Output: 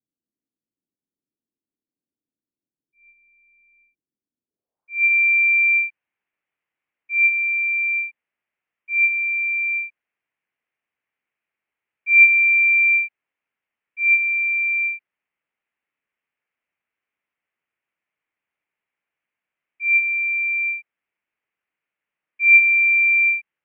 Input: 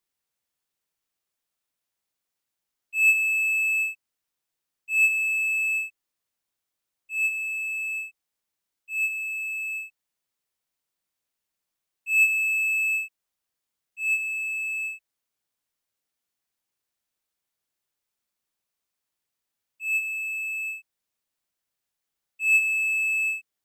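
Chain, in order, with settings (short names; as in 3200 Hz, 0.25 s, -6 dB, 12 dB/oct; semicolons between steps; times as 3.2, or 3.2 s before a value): mistuned SSB -250 Hz 380–3300 Hz; low-pass sweep 290 Hz -> 2300 Hz, 4.46–5.12; gain +1.5 dB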